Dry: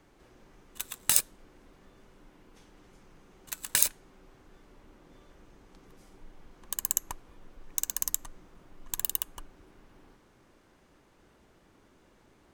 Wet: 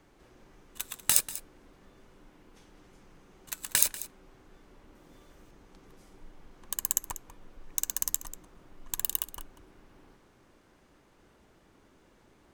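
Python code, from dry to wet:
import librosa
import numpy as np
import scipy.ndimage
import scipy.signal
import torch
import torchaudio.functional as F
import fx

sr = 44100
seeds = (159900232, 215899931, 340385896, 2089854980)

y = fx.high_shelf(x, sr, hz=6900.0, db=8.5, at=(4.95, 5.51))
y = y + 10.0 ** (-15.5 / 20.0) * np.pad(y, (int(191 * sr / 1000.0), 0))[:len(y)]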